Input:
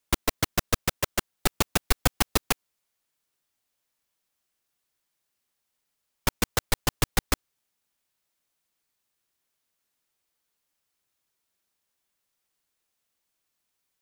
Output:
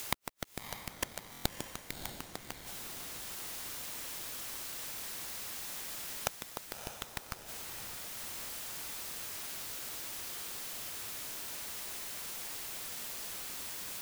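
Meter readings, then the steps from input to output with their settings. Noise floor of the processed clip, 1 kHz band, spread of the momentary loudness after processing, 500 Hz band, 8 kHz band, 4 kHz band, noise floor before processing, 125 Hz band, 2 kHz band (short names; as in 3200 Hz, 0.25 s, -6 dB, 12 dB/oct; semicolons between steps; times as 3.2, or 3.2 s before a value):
-51 dBFS, -10.5 dB, 4 LU, -12.0 dB, -5.0 dB, -7.0 dB, -80 dBFS, -15.5 dB, -9.5 dB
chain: upward compressor, threshold -27 dBFS; added noise white -48 dBFS; flipped gate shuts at -15 dBFS, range -41 dB; diffused feedback echo 0.612 s, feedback 58%, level -8 dB; stuck buffer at 1.31, samples 1024, times 5; gain +3 dB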